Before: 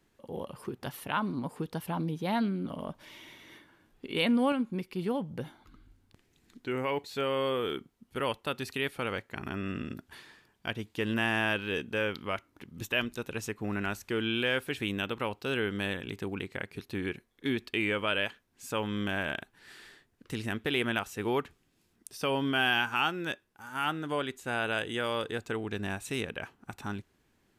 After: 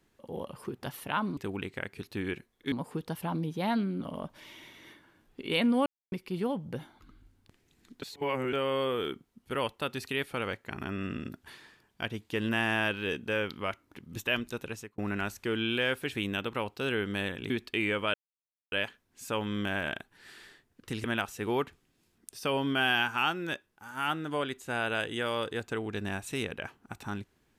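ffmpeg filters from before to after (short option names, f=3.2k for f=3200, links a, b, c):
-filter_complex "[0:a]asplit=11[a][b][c][d][e][f][g][h][i][j][k];[a]atrim=end=1.372[l];[b]atrim=start=16.148:end=17.502[m];[c]atrim=start=1.368:end=4.51,asetpts=PTS-STARTPTS,afade=t=out:st=3.138:d=0.004:c=hsin[n];[d]atrim=start=4.51:end=4.77,asetpts=PTS-STARTPTS,volume=0[o];[e]atrim=start=4.77:end=6.672,asetpts=PTS-STARTPTS,afade=t=in:d=0.004:c=hsin[p];[f]atrim=start=6.668:end=7.182,asetpts=PTS-STARTPTS,areverse[q];[g]atrim=start=7.178:end=13.63,asetpts=PTS-STARTPTS,afade=t=out:st=6.092:d=0.36[r];[h]atrim=start=13.63:end=16.152,asetpts=PTS-STARTPTS,afade=t=in:d=0.004:c=hsin[s];[i]atrim=start=17.498:end=18.14,asetpts=PTS-STARTPTS,afade=t=out:st=0.638:d=0.004:c=hsin,apad=pad_dur=0.58[t];[j]atrim=start=18.14:end=20.462,asetpts=PTS-STARTPTS,afade=t=in:d=0.004:c=hsin[u];[k]atrim=start=20.818[v];[l][m]acrossfade=d=0.004:c1=hsin:c2=hsin[w];[n][o][p]concat=n=3:v=0:a=1[x];[w][x]acrossfade=d=0.004:c1=hsin:c2=hsin[y];[y][q]acrossfade=d=0.004:c1=hsin:c2=hsin[z];[r][s]concat=n=2:v=0:a=1[aa];[z][aa]acrossfade=d=0.004:c1=hsin:c2=hsin[ab];[t][u]concat=n=2:v=0:a=1[ac];[ab][ac]acrossfade=d=0.004:c1=hsin:c2=hsin[ad];[ad][v]acrossfade=d=0.004:c1=hsin:c2=hsin"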